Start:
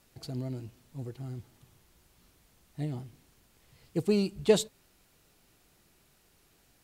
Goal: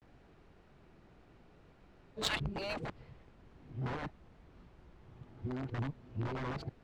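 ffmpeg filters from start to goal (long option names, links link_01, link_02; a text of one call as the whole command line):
ffmpeg -i in.wav -filter_complex "[0:a]areverse,afftfilt=real='re*lt(hypot(re,im),0.126)':imag='im*lt(hypot(re,im),0.126)':win_size=1024:overlap=0.75,acrossover=split=150|1200[link_01][link_02][link_03];[link_02]aeval=exprs='(mod(106*val(0)+1,2)-1)/106':channel_layout=same[link_04];[link_01][link_04][link_03]amix=inputs=3:normalize=0,adynamicsmooth=sensitivity=2.5:basefreq=1800,volume=7.5dB" out.wav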